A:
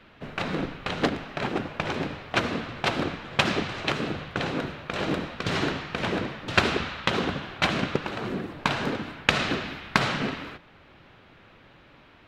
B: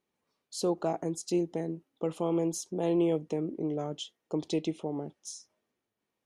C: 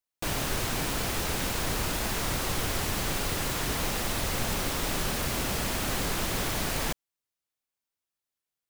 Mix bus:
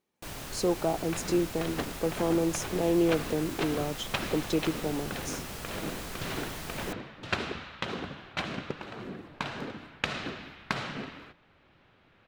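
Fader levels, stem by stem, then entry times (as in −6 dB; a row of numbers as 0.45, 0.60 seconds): −9.5, +2.0, −10.5 decibels; 0.75, 0.00, 0.00 seconds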